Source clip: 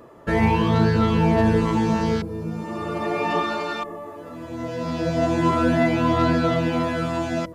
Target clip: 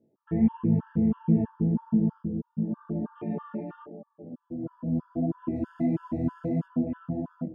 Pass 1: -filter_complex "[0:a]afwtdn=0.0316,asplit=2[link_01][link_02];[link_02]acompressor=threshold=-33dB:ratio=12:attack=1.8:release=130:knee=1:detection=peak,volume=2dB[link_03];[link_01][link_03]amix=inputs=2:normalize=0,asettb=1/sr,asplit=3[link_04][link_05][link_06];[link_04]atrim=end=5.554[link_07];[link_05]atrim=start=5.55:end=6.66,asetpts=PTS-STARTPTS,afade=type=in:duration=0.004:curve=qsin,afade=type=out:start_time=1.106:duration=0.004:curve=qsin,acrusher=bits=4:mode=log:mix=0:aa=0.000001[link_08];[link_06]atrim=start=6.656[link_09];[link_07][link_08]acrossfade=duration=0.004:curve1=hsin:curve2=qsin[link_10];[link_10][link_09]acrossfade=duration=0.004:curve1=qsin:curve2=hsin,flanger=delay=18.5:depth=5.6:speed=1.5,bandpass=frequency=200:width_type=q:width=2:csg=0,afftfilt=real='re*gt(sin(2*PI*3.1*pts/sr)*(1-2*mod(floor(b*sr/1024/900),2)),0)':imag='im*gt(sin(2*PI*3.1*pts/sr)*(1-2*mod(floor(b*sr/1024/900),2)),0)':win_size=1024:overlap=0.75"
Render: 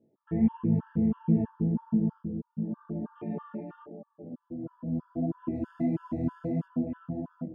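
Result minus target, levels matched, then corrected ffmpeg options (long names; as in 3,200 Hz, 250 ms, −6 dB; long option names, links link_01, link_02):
downward compressor: peak gain reduction +9.5 dB
-filter_complex "[0:a]afwtdn=0.0316,asplit=2[link_01][link_02];[link_02]acompressor=threshold=-22.5dB:ratio=12:attack=1.8:release=130:knee=1:detection=peak,volume=2dB[link_03];[link_01][link_03]amix=inputs=2:normalize=0,asettb=1/sr,asplit=3[link_04][link_05][link_06];[link_04]atrim=end=5.554[link_07];[link_05]atrim=start=5.55:end=6.66,asetpts=PTS-STARTPTS,afade=type=in:duration=0.004:curve=qsin,afade=type=out:start_time=1.106:duration=0.004:curve=qsin,acrusher=bits=4:mode=log:mix=0:aa=0.000001[link_08];[link_06]atrim=start=6.656[link_09];[link_07][link_08]acrossfade=duration=0.004:curve1=hsin:curve2=qsin[link_10];[link_10][link_09]acrossfade=duration=0.004:curve1=qsin:curve2=hsin,flanger=delay=18.5:depth=5.6:speed=1.5,bandpass=frequency=200:width_type=q:width=2:csg=0,afftfilt=real='re*gt(sin(2*PI*3.1*pts/sr)*(1-2*mod(floor(b*sr/1024/900),2)),0)':imag='im*gt(sin(2*PI*3.1*pts/sr)*(1-2*mod(floor(b*sr/1024/900),2)),0)':win_size=1024:overlap=0.75"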